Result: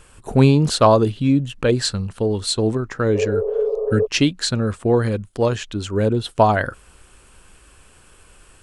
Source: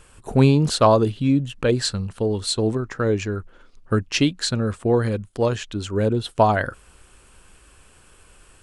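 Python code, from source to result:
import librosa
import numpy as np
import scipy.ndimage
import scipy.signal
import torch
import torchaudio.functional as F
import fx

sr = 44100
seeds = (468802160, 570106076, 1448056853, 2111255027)

y = fx.spec_repair(x, sr, seeds[0], start_s=3.17, length_s=0.87, low_hz=430.0, high_hz=1300.0, source='before')
y = y * 10.0 ** (2.0 / 20.0)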